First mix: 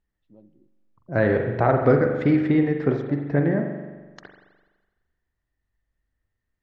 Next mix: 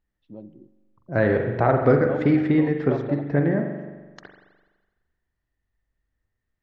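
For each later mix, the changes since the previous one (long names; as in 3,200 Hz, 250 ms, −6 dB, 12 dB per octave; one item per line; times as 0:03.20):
first voice +11.0 dB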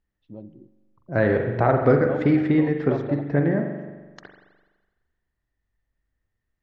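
first voice: remove high-pass filter 130 Hz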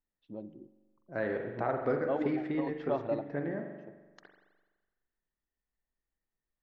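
second voice −11.5 dB
master: add parametric band 91 Hz −11.5 dB 1.8 octaves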